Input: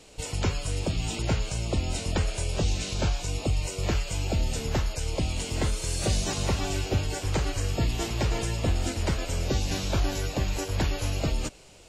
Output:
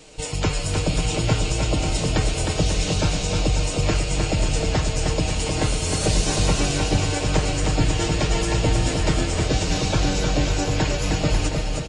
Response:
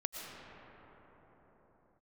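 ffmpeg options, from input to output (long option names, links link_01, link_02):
-filter_complex "[0:a]aecho=1:1:6.5:0.43,aecho=1:1:310|542.5|716.9|847.7|945.7:0.631|0.398|0.251|0.158|0.1,asplit=2[link_01][link_02];[1:a]atrim=start_sample=2205,adelay=143[link_03];[link_02][link_03]afir=irnorm=-1:irlink=0,volume=-15dB[link_04];[link_01][link_04]amix=inputs=2:normalize=0,aresample=22050,aresample=44100,volume=4.5dB"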